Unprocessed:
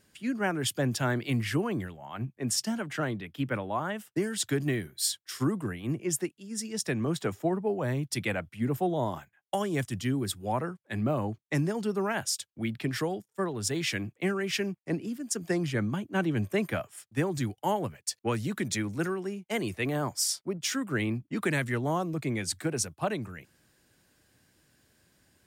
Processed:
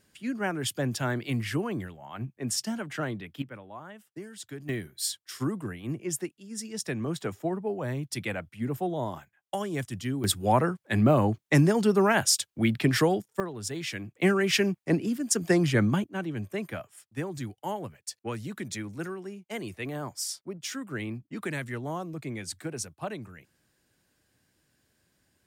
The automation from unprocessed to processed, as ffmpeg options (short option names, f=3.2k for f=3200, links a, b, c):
-af "asetnsamples=n=441:p=0,asendcmd='3.42 volume volume -12dB;4.69 volume volume -2dB;10.24 volume volume 7.5dB;13.4 volume volume -4dB;14.15 volume volume 6dB;16.04 volume volume -5dB',volume=-1dB"